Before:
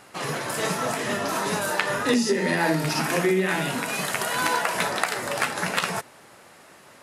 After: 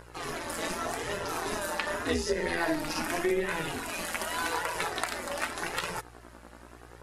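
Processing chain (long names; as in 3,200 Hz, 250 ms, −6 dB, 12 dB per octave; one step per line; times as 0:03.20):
hum with harmonics 60 Hz, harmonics 29, −44 dBFS −3 dB per octave
amplitude modulation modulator 170 Hz, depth 70%
flanger 0.85 Hz, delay 1.9 ms, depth 1.8 ms, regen −19%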